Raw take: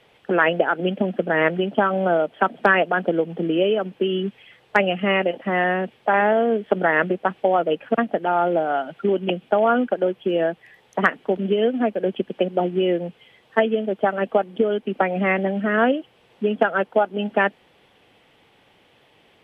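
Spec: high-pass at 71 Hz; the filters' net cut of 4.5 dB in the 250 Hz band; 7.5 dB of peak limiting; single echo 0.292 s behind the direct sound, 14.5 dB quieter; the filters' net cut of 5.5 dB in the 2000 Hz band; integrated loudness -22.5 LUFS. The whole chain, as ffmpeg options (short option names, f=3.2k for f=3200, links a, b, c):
-af "highpass=71,equalizer=f=250:t=o:g=-6.5,equalizer=f=2k:t=o:g=-7,alimiter=limit=-12.5dB:level=0:latency=1,aecho=1:1:292:0.188,volume=2.5dB"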